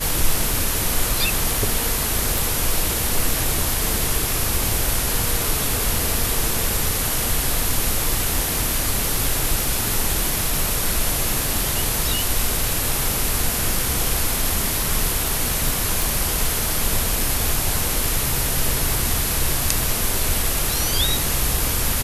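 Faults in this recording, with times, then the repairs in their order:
0:02.38: click
0:16.02: click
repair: click removal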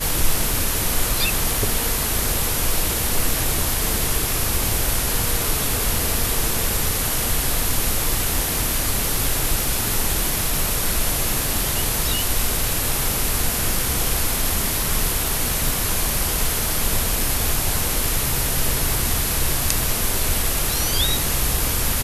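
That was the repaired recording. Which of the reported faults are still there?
none of them is left

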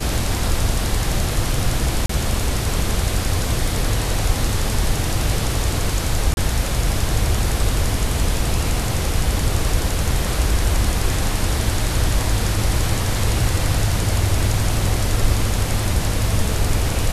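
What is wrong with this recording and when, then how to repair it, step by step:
0:02.06–0:02.09: drop-out 34 ms
0:06.34–0:06.37: drop-out 31 ms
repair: repair the gap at 0:02.06, 34 ms
repair the gap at 0:06.34, 31 ms

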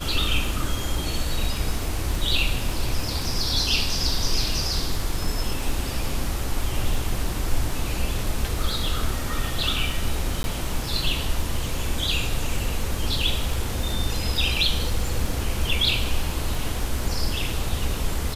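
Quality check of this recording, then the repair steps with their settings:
surface crackle 35 per second −29 dBFS
0:10.43–0:10.44: drop-out 11 ms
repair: click removal
repair the gap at 0:10.43, 11 ms

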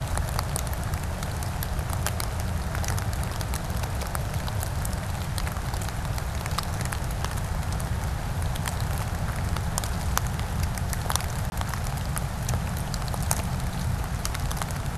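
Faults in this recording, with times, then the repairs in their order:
0:11.50–0:11.52: drop-out 21 ms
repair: repair the gap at 0:11.50, 21 ms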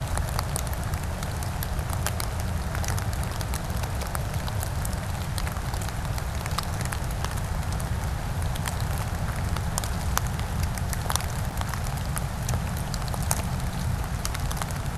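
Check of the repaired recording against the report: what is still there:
none of them is left

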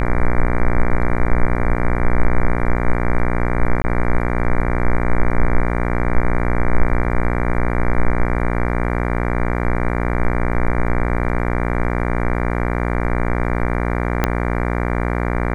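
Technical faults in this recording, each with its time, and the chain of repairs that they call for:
mains buzz 60 Hz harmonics 39 −20 dBFS
0:03.82–0:03.84: drop-out 20 ms
0:14.24: click −2 dBFS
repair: click removal
hum removal 60 Hz, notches 39
repair the gap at 0:03.82, 20 ms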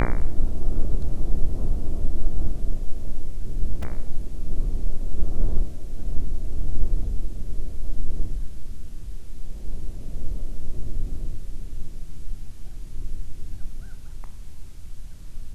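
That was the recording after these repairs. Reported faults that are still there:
0:14.24: click

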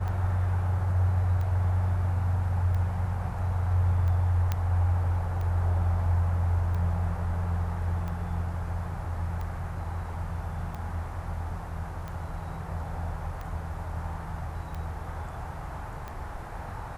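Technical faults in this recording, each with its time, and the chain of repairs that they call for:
scratch tick 45 rpm −25 dBFS
0:04.52: click −14 dBFS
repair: click removal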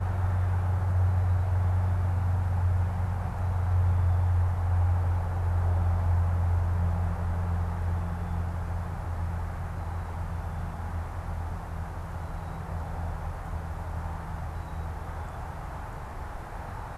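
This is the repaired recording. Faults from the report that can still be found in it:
none of them is left

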